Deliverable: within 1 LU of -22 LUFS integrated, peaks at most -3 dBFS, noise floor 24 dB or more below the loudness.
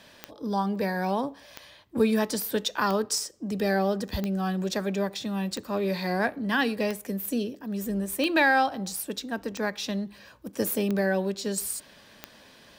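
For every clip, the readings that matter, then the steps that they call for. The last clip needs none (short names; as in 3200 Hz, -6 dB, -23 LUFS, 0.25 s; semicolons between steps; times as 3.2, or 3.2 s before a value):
clicks 10; loudness -28.0 LUFS; peak -11.5 dBFS; loudness target -22.0 LUFS
-> de-click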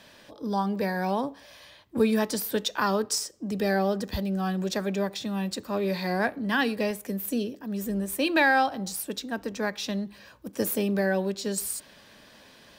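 clicks 0; loudness -28.0 LUFS; peak -11.5 dBFS; loudness target -22.0 LUFS
-> gain +6 dB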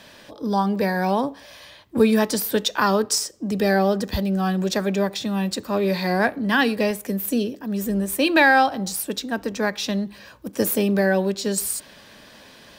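loudness -22.0 LUFS; peak -5.5 dBFS; noise floor -48 dBFS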